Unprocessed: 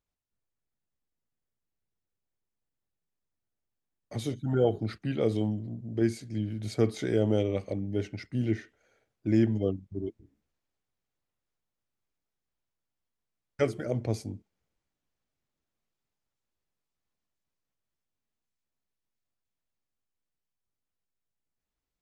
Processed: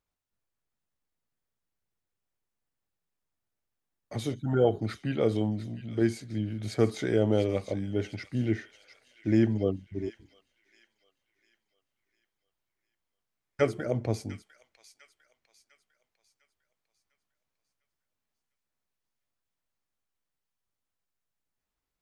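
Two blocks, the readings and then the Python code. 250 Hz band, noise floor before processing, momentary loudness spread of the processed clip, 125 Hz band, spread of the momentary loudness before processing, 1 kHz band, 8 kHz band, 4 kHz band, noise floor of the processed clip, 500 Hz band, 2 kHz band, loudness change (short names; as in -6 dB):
+0.5 dB, under -85 dBFS, 10 LU, 0.0 dB, 10 LU, +3.0 dB, +0.5 dB, +1.5 dB, under -85 dBFS, +1.5 dB, +3.0 dB, +1.0 dB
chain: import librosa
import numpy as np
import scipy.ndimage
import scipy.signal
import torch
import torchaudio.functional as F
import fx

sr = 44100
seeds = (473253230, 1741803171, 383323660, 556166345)

p1 = fx.peak_eq(x, sr, hz=1200.0, db=4.0, octaves=2.1)
y = p1 + fx.echo_wet_highpass(p1, sr, ms=701, feedback_pct=43, hz=2200.0, wet_db=-10.5, dry=0)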